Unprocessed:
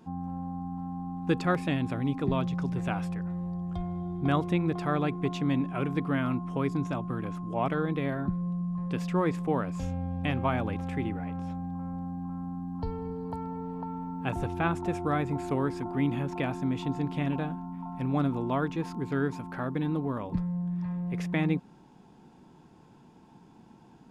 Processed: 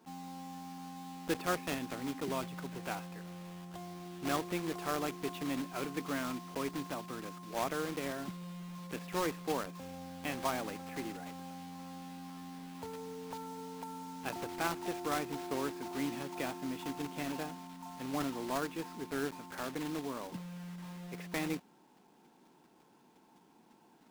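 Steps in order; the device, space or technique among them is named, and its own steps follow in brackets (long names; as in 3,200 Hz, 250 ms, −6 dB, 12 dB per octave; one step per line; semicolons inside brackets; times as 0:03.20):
early digital voice recorder (band-pass filter 280–3,800 Hz; one scale factor per block 3 bits)
level −5.5 dB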